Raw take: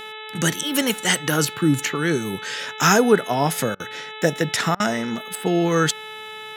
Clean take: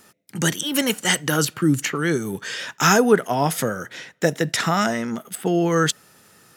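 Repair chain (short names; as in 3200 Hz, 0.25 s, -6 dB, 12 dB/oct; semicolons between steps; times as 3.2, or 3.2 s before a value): de-hum 433.3 Hz, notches 9; interpolate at 3.75/4.75, 48 ms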